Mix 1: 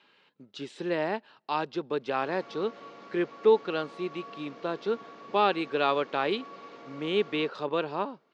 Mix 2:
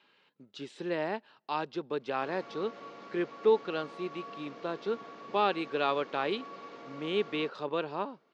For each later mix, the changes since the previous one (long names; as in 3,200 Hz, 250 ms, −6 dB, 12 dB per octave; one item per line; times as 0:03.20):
speech −3.5 dB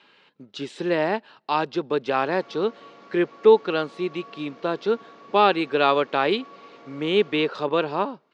speech +10.0 dB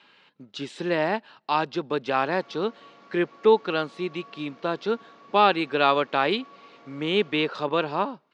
background −3.0 dB
master: add parametric band 420 Hz −4 dB 0.83 octaves